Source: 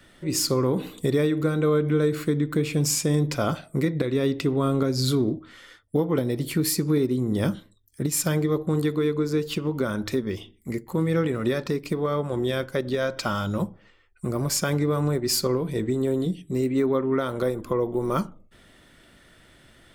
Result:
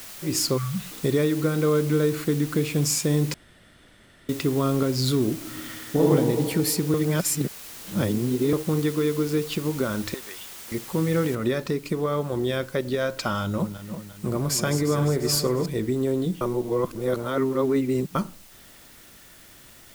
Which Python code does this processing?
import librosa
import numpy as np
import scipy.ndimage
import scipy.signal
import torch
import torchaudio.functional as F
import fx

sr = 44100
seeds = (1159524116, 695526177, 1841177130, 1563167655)

y = fx.spec_erase(x, sr, start_s=0.58, length_s=0.33, low_hz=220.0, high_hz=1100.0)
y = fx.reverb_throw(y, sr, start_s=5.35, length_s=0.67, rt60_s=2.2, drr_db=-6.5)
y = fx.highpass(y, sr, hz=940.0, slope=12, at=(10.14, 10.72))
y = fx.noise_floor_step(y, sr, seeds[0], at_s=11.35, before_db=-41, after_db=-51, tilt_db=0.0)
y = fx.reverse_delay_fb(y, sr, ms=175, feedback_pct=70, wet_db=-9.5, at=(13.43, 15.66))
y = fx.edit(y, sr, fx.room_tone_fill(start_s=3.34, length_s=0.95),
    fx.reverse_span(start_s=6.94, length_s=1.59),
    fx.reverse_span(start_s=16.41, length_s=1.74), tone=tone)